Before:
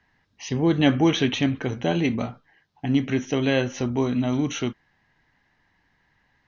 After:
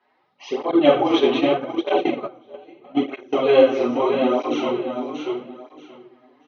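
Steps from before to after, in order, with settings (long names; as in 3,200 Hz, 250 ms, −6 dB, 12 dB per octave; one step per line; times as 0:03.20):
repeating echo 633 ms, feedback 22%, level −6 dB
rectangular room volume 100 cubic metres, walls mixed, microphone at 1.4 metres
0:00.71–0:03.33: noise gate −15 dBFS, range −20 dB
loudspeaker in its box 350–4,400 Hz, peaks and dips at 360 Hz +10 dB, 510 Hz +8 dB, 760 Hz +9 dB, 1,200 Hz +10 dB, 1,700 Hz −9 dB
through-zero flanger with one copy inverted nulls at 0.79 Hz, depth 6.7 ms
level −1 dB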